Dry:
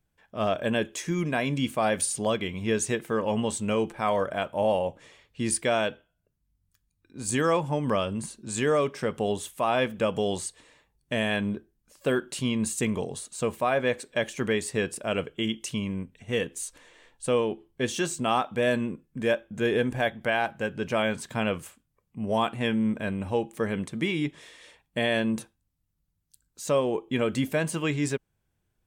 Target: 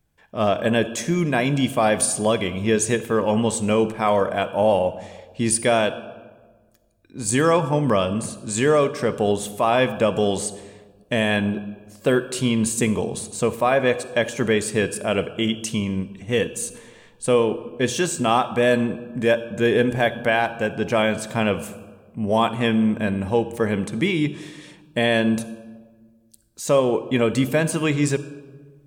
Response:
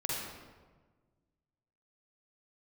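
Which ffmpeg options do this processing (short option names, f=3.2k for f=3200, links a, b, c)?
-filter_complex "[0:a]asplit=2[a][b];[b]asuperstop=centerf=2000:order=20:qfactor=3.5[c];[1:a]atrim=start_sample=2205[d];[c][d]afir=irnorm=-1:irlink=0,volume=-16dB[e];[a][e]amix=inputs=2:normalize=0,volume=5.5dB"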